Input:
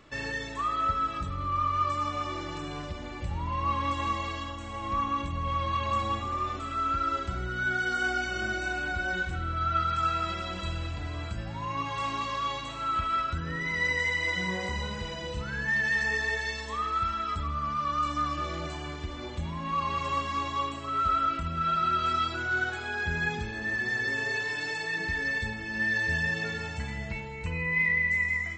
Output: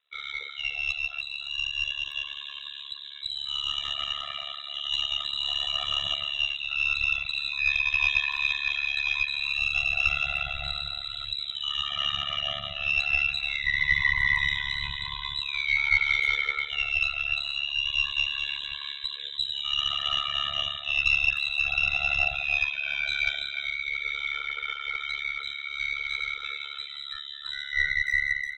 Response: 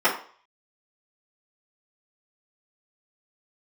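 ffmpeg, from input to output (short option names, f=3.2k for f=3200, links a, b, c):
-filter_complex "[0:a]lowpass=f=3.4k:t=q:w=0.5098,lowpass=f=3.4k:t=q:w=0.6013,lowpass=f=3.4k:t=q:w=0.9,lowpass=f=3.4k:t=q:w=2.563,afreqshift=-4000,asubboost=boost=8.5:cutoff=110,asplit=2[a][b];[1:a]atrim=start_sample=2205,lowshelf=f=430:g=-10,highshelf=f=2.2k:g=2.5[c];[b][c]afir=irnorm=-1:irlink=0,volume=-23dB[d];[a][d]amix=inputs=2:normalize=0,afftdn=nr=19:nf=-35,bandreject=f=60:t=h:w=6,bandreject=f=120:t=h:w=6,bandreject=f=180:t=h:w=6,bandreject=f=240:t=h:w=6,acontrast=49,aeval=exprs='0.376*(cos(1*acos(clip(val(0)/0.376,-1,1)))-cos(1*PI/2))+0.0668*(cos(2*acos(clip(val(0)/0.376,-1,1)))-cos(2*PI/2))':c=same,asplit=2[e][f];[f]adelay=300,highpass=300,lowpass=3.4k,asoftclip=type=hard:threshold=-14.5dB,volume=-7dB[g];[e][g]amix=inputs=2:normalize=0,dynaudnorm=f=420:g=21:m=12dB,tremolo=f=71:d=1,adynamicequalizer=threshold=0.0398:dfrequency=2800:dqfactor=0.7:tfrequency=2800:tqfactor=0.7:attack=5:release=100:ratio=0.375:range=2.5:mode=cutabove:tftype=highshelf,volume=-5dB"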